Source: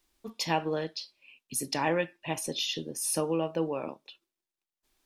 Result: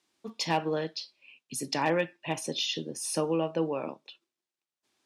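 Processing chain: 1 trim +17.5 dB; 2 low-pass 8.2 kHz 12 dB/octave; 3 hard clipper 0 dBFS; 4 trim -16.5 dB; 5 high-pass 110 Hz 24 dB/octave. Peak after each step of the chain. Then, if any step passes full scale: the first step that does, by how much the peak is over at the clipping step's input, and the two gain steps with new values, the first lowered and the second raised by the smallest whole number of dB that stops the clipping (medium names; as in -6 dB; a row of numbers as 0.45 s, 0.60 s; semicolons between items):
+4.5 dBFS, +4.5 dBFS, 0.0 dBFS, -16.5 dBFS, -14.0 dBFS; step 1, 4.5 dB; step 1 +12.5 dB, step 4 -11.5 dB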